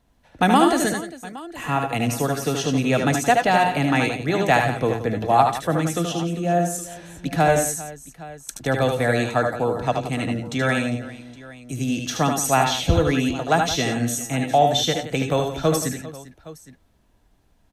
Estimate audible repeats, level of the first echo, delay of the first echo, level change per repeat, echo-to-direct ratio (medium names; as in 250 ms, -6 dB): 4, -5.5 dB, 75 ms, no regular repeats, -3.0 dB